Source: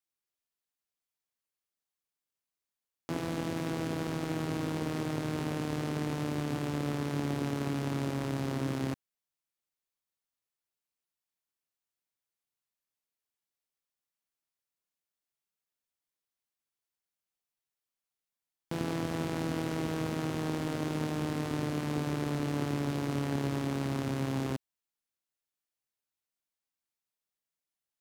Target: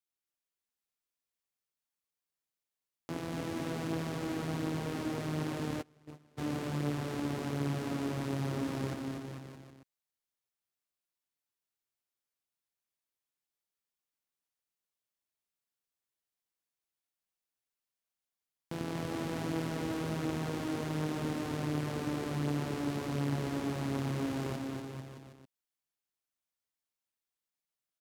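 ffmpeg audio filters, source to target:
ffmpeg -i in.wav -filter_complex "[0:a]aecho=1:1:240|444|617.4|764.8|890.1:0.631|0.398|0.251|0.158|0.1,asplit=3[link_01][link_02][link_03];[link_01]afade=type=out:start_time=5.81:duration=0.02[link_04];[link_02]agate=range=-29dB:threshold=-25dB:ratio=16:detection=peak,afade=type=in:start_time=5.81:duration=0.02,afade=type=out:start_time=6.37:duration=0.02[link_05];[link_03]afade=type=in:start_time=6.37:duration=0.02[link_06];[link_04][link_05][link_06]amix=inputs=3:normalize=0,volume=-4dB" out.wav

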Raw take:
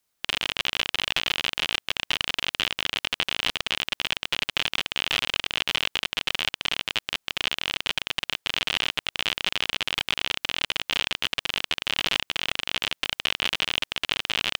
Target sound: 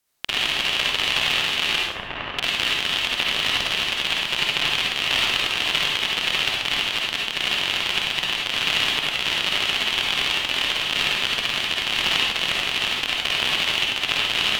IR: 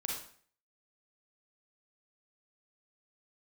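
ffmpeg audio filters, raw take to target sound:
-filter_complex "[0:a]asettb=1/sr,asplit=3[link_01][link_02][link_03];[link_01]atrim=end=1.804[link_04];[link_02]atrim=start=1.8:end=2.36,asetpts=PTS-STARTPTS,afade=type=in:duration=0.004:curve=qsin,afade=type=out:start_time=0.556:duration=0.004:curve=qsin,lowpass=1500[link_05];[link_03]atrim=start=2.356[link_06];[link_04][link_05]acrossfade=duration=0.004:curve1=hsin:curve2=qsin[link_07];[link_07][link_06]acrossfade=duration=0.004:curve1=qsin:curve2=hsin[link_08];[1:a]atrim=start_sample=2205,asetrate=34839,aresample=44100[link_09];[link_08][link_09]afir=irnorm=-1:irlink=0,volume=2dB"

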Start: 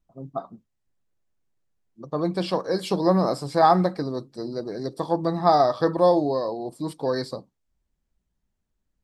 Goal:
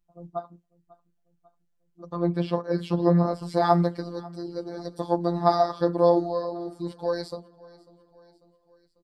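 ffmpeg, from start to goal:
ffmpeg -i in.wav -filter_complex "[0:a]asettb=1/sr,asplit=3[link_01][link_02][link_03];[link_01]atrim=end=2.164[link_04];[link_02]atrim=start=2.16:end=3.43,asetpts=PTS-STARTPTS,afade=type=in:duration=0.004:curve=qsin,afade=type=out:start_time=1.266:duration=0.004:curve=qsin,bass=frequency=250:gain=3,treble=frequency=4000:gain=-13[link_05];[link_03]atrim=start=3.426[link_06];[link_04][link_05]acrossfade=duration=0.004:curve1=hsin:curve2=qsin[link_07];[link_07][link_06]acrossfade=duration=0.004:curve1=qsin:curve2=hsin,asettb=1/sr,asplit=3[link_08][link_09][link_10];[link_08]atrim=end=5.814[link_11];[link_09]atrim=start=5.81:end=6.99,asetpts=PTS-STARTPTS,afade=type=in:duration=0.004:curve=qsin,afade=type=out:start_time=1.176:duration=0.004:curve=qsin,acrossover=split=5500[link_12][link_13];[link_13]acompressor=threshold=-60dB:ratio=4:attack=1:release=60[link_14];[link_12][link_14]amix=inputs=2:normalize=0[link_15];[link_10]atrim=start=6.986[link_16];[link_11][link_15]acrossfade=duration=0.004:curve1=hsin:curve2=qsin[link_17];[link_17][link_16]acrossfade=duration=0.004:curve1=qsin:curve2=hsin,afftfilt=real='hypot(re,im)*cos(PI*b)':imag='0':win_size=1024:overlap=0.75,aecho=1:1:545|1090|1635|2180:0.075|0.0405|0.0219|0.0118" out.wav

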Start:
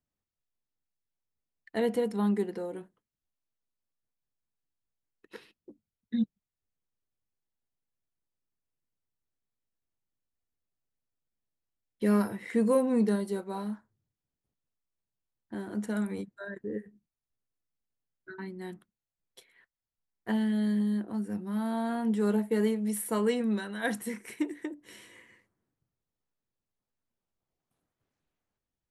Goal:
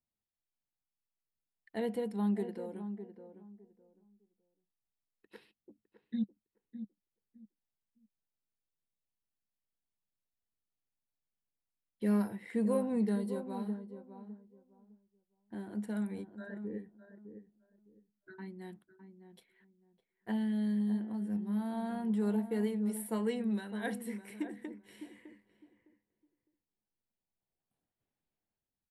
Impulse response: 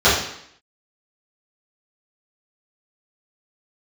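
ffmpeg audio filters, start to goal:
-filter_complex "[0:a]equalizer=frequency=200:width_type=o:width=0.33:gain=4,equalizer=frequency=800:width_type=o:width=0.33:gain=3,equalizer=frequency=1250:width_type=o:width=0.33:gain=-5,equalizer=frequency=6300:width_type=o:width=0.33:gain=-10,asplit=2[link_01][link_02];[link_02]adelay=608,lowpass=frequency=1000:poles=1,volume=-9.5dB,asplit=2[link_03][link_04];[link_04]adelay=608,lowpass=frequency=1000:poles=1,volume=0.22,asplit=2[link_05][link_06];[link_06]adelay=608,lowpass=frequency=1000:poles=1,volume=0.22[link_07];[link_03][link_05][link_07]amix=inputs=3:normalize=0[link_08];[link_01][link_08]amix=inputs=2:normalize=0,volume=-7.5dB"

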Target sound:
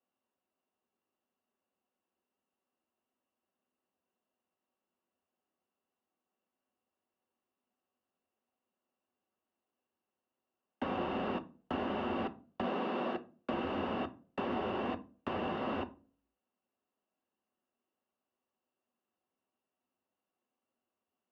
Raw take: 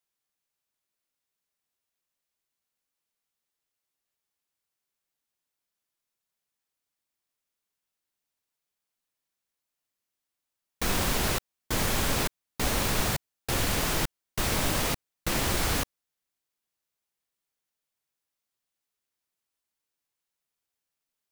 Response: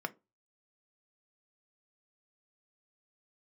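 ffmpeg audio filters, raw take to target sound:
-filter_complex "[0:a]acrossover=split=230|770[link_01][link_02][link_03];[link_01]acompressor=threshold=-37dB:ratio=4[link_04];[link_02]acompressor=threshold=-46dB:ratio=4[link_05];[link_03]acompressor=threshold=-37dB:ratio=4[link_06];[link_04][link_05][link_06]amix=inputs=3:normalize=0,highpass=frequency=270:width_type=q:width=0.5412,highpass=frequency=270:width_type=q:width=1.307,lowpass=frequency=3600:width_type=q:width=0.5176,lowpass=frequency=3600:width_type=q:width=0.7071,lowpass=frequency=3600:width_type=q:width=1.932,afreqshift=-200,asoftclip=type=tanh:threshold=-27dB,asplit=3[link_07][link_08][link_09];[link_07]afade=type=out:start_time=12.62:duration=0.02[link_10];[link_08]afreqshift=130,afade=type=in:start_time=12.62:duration=0.02,afade=type=out:start_time=13.13:duration=0.02[link_11];[link_09]afade=type=in:start_time=13.13:duration=0.02[link_12];[link_10][link_11][link_12]amix=inputs=3:normalize=0,equalizer=frequency=125:width_type=o:width=1:gain=-11,equalizer=frequency=250:width_type=o:width=1:gain=9,equalizer=frequency=2000:width_type=o:width=1:gain=-4[link_13];[1:a]atrim=start_sample=2205,asetrate=22932,aresample=44100[link_14];[link_13][link_14]afir=irnorm=-1:irlink=0,volume=-2.5dB"

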